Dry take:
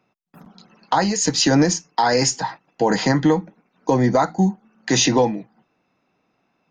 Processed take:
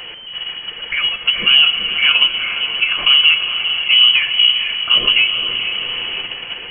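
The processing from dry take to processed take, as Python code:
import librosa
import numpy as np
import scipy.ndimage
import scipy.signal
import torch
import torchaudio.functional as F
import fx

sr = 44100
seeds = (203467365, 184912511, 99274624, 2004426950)

p1 = x + 0.5 * 10.0 ** (-24.5 / 20.0) * np.sign(x)
p2 = fx.peak_eq(p1, sr, hz=130.0, db=11.0, octaves=1.3)
p3 = p2 + fx.echo_diffused(p2, sr, ms=452, feedback_pct=52, wet_db=-6.0, dry=0)
p4 = fx.freq_invert(p3, sr, carrier_hz=3100)
p5 = fx.level_steps(p4, sr, step_db=12)
p6 = p4 + F.gain(torch.from_numpy(p5), 3.0).numpy()
p7 = fx.room_shoebox(p6, sr, seeds[0], volume_m3=3900.0, walls='mixed', distance_m=0.86)
y = F.gain(torch.from_numpy(p7), -8.5).numpy()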